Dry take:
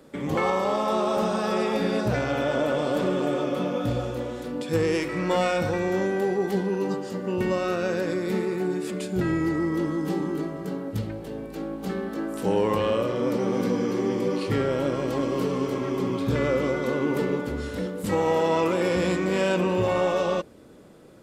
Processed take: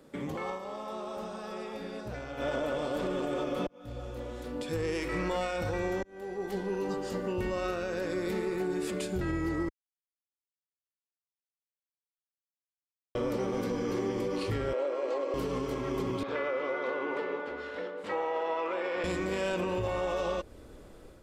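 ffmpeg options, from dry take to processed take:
-filter_complex "[0:a]asettb=1/sr,asplit=3[a][b][c];[a]atrim=end=14.734[d];[b]atrim=start=14.73:end=15.34,asetpts=PTS-STARTPTS,afade=t=in:d=0.004:c=qsin,afade=t=out:st=0.606:d=0.004:c=qsin,highpass=f=370:w=0.5412,highpass=f=370:w=1.3066,equalizer=f=540:t=q:w=4:g=6,equalizer=f=1.6k:t=q:w=4:g=-4,equalizer=f=3.3k:t=q:w=4:g=-7,equalizer=f=5.5k:t=q:w=4:g=-10,lowpass=f=6.5k:w=0.5412,lowpass=f=6.5k:w=1.3066[e];[c]atrim=start=15.336[f];[d][e]acrossfade=d=0.004:c1=hsin:c2=qsin[g];[g][f]acrossfade=d=0.004:c1=qsin:c2=hsin,asettb=1/sr,asplit=3[h][i][j];[h]atrim=end=16.234[k];[i]atrim=start=16.23:end=19.04,asetpts=PTS-STARTPTS,afade=t=in:d=0.004:c=qsin,afade=t=out:st=2.806:d=0.004:c=qsin,highpass=510,lowpass=2.6k[l];[j]atrim=start=19.036[m];[k][l]acrossfade=d=0.004:c1=hsin:c2=qsin[n];[n][m]acrossfade=d=0.004:c1=qsin:c2=hsin,asplit=7[o][p][q][r][s][t][u];[o]atrim=end=0.59,asetpts=PTS-STARTPTS,afade=t=out:st=0.44:d=0.15:silence=0.211349[v];[p]atrim=start=0.59:end=2.37,asetpts=PTS-STARTPTS,volume=-13.5dB[w];[q]atrim=start=2.37:end=3.67,asetpts=PTS-STARTPTS,afade=t=in:d=0.15:silence=0.211349,afade=t=out:st=1.296:d=0.004:c=hsin[x];[r]atrim=start=3.67:end=6.03,asetpts=PTS-STARTPTS,afade=t=in:d=1.37,afade=t=out:st=2.356:d=0.004:c=hsin[y];[s]atrim=start=6.03:end=9.69,asetpts=PTS-STARTPTS,afade=t=in:d=1.03,afade=t=out:st=3.656:d=0.004:c=hsin[z];[t]atrim=start=9.69:end=13.15,asetpts=PTS-STARTPTS,volume=0[aa];[u]atrim=start=13.15,asetpts=PTS-STARTPTS,afade=t=in:d=0.004:c=hsin[ab];[v][w][x][y][z][aa][ab]concat=n=7:v=0:a=1,asubboost=boost=10:cutoff=52,alimiter=limit=-23dB:level=0:latency=1:release=160,dynaudnorm=f=390:g=3:m=4.5dB,volume=-5dB"

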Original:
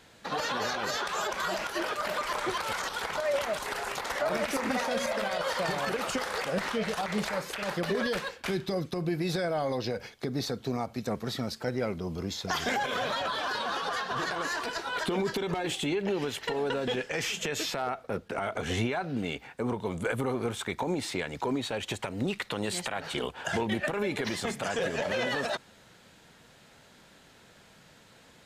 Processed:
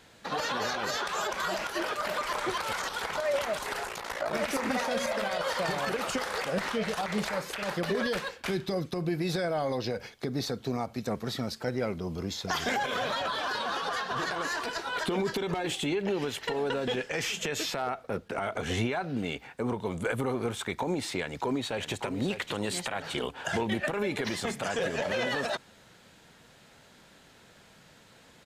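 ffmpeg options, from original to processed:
-filter_complex "[0:a]asettb=1/sr,asplit=3[a][b][c];[a]atrim=end=3.864[d];[b]atrim=start=3.86:end=4.34,asetpts=PTS-STARTPTS,afade=t=in:d=0.004:c=qsin,afade=t=out:st=0.476:d=0.004:c=qsin,aeval=exprs='val(0)*sin(2*PI*28*n/s)':c=same[e];[c]atrim=start=4.336[f];[d][e]acrossfade=d=0.004:c1=hsin:c2=qsin[g];[g][f]acrossfade=d=0.004:c1=qsin:c2=hsin,asplit=2[h][i];[i]afade=t=in:st=21.18:d=0.01,afade=t=out:st=22.02:d=0.01,aecho=0:1:590|1180|1770:0.354813|0.106444|0.0319332[j];[h][j]amix=inputs=2:normalize=0"

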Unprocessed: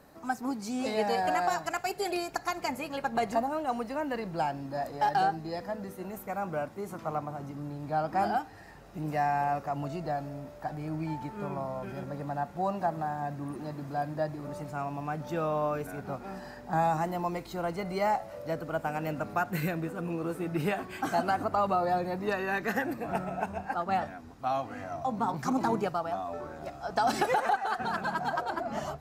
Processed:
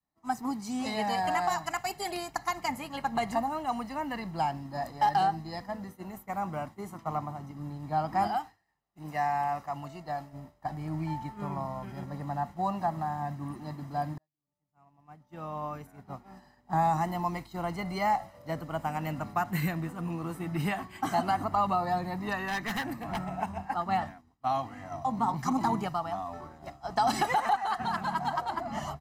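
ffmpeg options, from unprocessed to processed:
-filter_complex "[0:a]asettb=1/sr,asplit=3[a][b][c];[a]atrim=end=8.274[d];[b]atrim=start=8.27:end=10.33,asetpts=PTS-STARTPTS,afade=t=in:d=0.004:c=qsin,afade=t=out:st=2.056:d=0.004:c=qsin,lowshelf=f=350:g=-8[e];[c]atrim=start=10.326[f];[d][e]acrossfade=d=0.004:c1=hsin:c2=qsin[g];[g][f]acrossfade=d=0.004:c1=qsin:c2=hsin,asettb=1/sr,asplit=3[h][i][j];[h]atrim=end=22.474[k];[i]atrim=start=22.47:end=23.29,asetpts=PTS-STARTPTS,afade=t=in:d=0.004:c=qsin,afade=t=out:st=0.816:d=0.004:c=qsin,aeval=exprs='0.0501*(abs(mod(val(0)/0.0501+3,4)-2)-1)':c=same[l];[j]atrim=start=23.286[m];[k][l]acrossfade=d=0.004:c1=hsin:c2=qsin[n];[n][m]acrossfade=d=0.004:c1=qsin:c2=hsin,asplit=2[o][p];[o]atrim=end=14.18,asetpts=PTS-STARTPTS,afade=t=out:st=14.176:d=0.004:c=hsin[q];[p]atrim=start=14.18,asetpts=PTS-STARTPTS,afade=t=in:d=2.85[r];[q][r]concat=n=2:v=0:a=1,agate=range=-33dB:threshold=-35dB:ratio=3:detection=peak,aecho=1:1:1:0.52,adynamicequalizer=threshold=0.00631:dfrequency=430:dqfactor=1.4:tfrequency=430:tqfactor=1.4:attack=5:release=100:ratio=0.375:range=2.5:mode=cutabove:tftype=bell"

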